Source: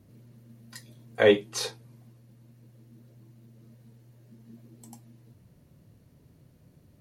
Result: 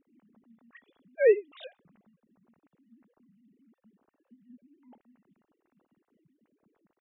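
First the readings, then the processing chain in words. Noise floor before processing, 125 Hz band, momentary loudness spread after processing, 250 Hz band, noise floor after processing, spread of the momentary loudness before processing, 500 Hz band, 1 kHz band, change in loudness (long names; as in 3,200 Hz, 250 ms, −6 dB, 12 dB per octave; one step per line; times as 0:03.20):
−60 dBFS, below −25 dB, 4 LU, −11.5 dB, −84 dBFS, 12 LU, −1.0 dB, below −20 dB, −0.5 dB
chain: three sine waves on the formant tracks
level −2 dB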